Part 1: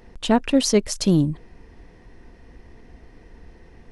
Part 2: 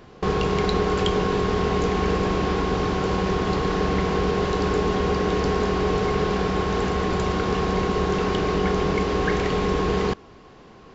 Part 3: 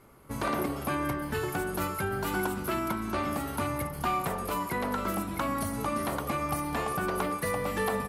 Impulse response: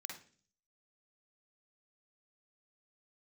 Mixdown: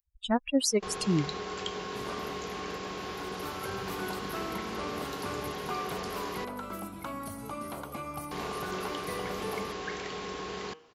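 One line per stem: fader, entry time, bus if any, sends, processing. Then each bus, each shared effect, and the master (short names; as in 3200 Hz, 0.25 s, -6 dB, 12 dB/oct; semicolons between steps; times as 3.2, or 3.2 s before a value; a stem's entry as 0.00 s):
-5.5 dB, 0.00 s, no send, per-bin expansion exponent 3; high shelf 6700 Hz +9 dB
-12.5 dB, 0.60 s, muted 6.45–8.31, no send, tilt +2.5 dB/oct; de-hum 157.6 Hz, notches 20
-7.5 dB, 1.65 s, no send, notch 1800 Hz, Q 7.3; auto duck -11 dB, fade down 0.60 s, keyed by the first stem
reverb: off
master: low shelf 62 Hz -7 dB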